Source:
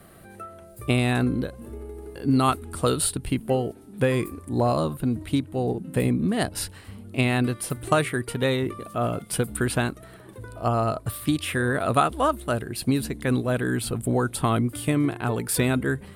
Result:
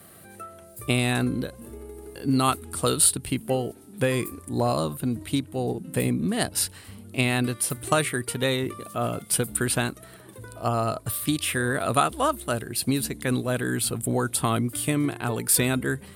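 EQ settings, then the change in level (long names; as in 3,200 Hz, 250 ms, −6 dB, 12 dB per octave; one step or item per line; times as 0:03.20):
high-pass filter 67 Hz
high-shelf EQ 3,500 Hz +9.5 dB
−2.0 dB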